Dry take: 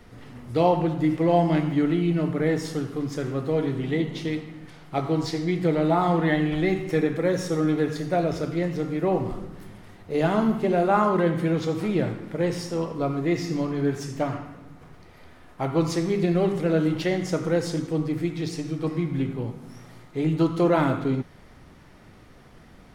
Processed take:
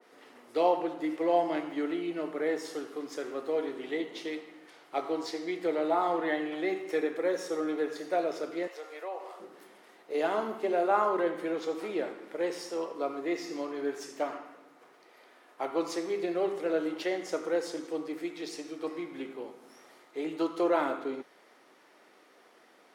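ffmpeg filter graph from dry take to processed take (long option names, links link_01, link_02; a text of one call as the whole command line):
ffmpeg -i in.wav -filter_complex "[0:a]asettb=1/sr,asplit=3[link_01][link_02][link_03];[link_01]atrim=end=8.674[link_04];[link_02]atrim=start=8.67:end=9.4,asetpts=PTS-STARTPTS,afade=type=in:duration=0.004:curve=qsin,afade=type=out:start_time=0.726:duration=0.004:curve=qsin,highpass=frequency=520:width=0.5412,highpass=frequency=520:width=1.3066,acompressor=threshold=-33dB:ratio=2:attack=3.2:release=140:knee=1:detection=peak[link_05];[link_03]atrim=start=9.396[link_06];[link_04][link_05]acrossfade=duration=0.004:curve1=hsin:curve2=qsin[link_07];[link_07][link_06]acrossfade=duration=0.004:curve1=qsin:curve2=hsin,highpass=frequency=340:width=0.5412,highpass=frequency=340:width=1.3066,adynamicequalizer=threshold=0.0126:dfrequency=1800:dqfactor=0.7:tfrequency=1800:tqfactor=0.7:attack=5:release=100:ratio=0.375:range=2:mode=cutabove:tftype=highshelf,volume=-4.5dB" out.wav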